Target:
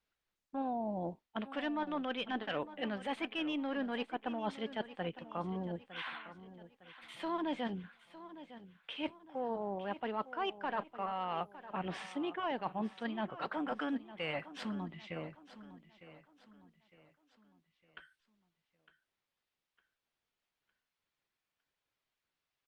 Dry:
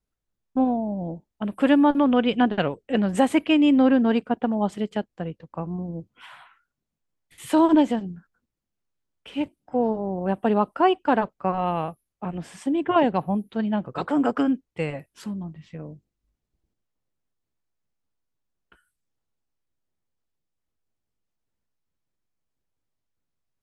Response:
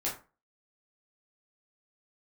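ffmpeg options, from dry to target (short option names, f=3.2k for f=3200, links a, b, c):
-filter_complex "[0:a]asoftclip=type=tanh:threshold=-8.5dB,asetrate=45938,aresample=44100,equalizer=f=3.7k:w=0.45:g=10.5,asplit=2[a][b];[b]highpass=f=720:p=1,volume=11dB,asoftclip=type=tanh:threshold=-5dB[c];[a][c]amix=inputs=2:normalize=0,lowpass=f=3.6k:p=1,volume=-6dB,areverse,acompressor=threshold=-28dB:ratio=8,areverse,aemphasis=mode=reproduction:type=50fm,asplit=2[d][e];[e]aecho=0:1:907|1814|2721|3628:0.188|0.0753|0.0301|0.0121[f];[d][f]amix=inputs=2:normalize=0,volume=-6dB" -ar 48000 -c:a libopus -b:a 48k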